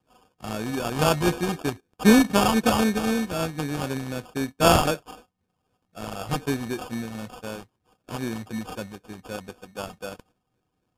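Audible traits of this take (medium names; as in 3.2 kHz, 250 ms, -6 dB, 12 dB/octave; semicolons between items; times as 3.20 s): a buzz of ramps at a fixed pitch in blocks of 16 samples; phasing stages 12, 3.9 Hz, lowest notch 480–2900 Hz; aliases and images of a low sample rate 2 kHz, jitter 0%; MP3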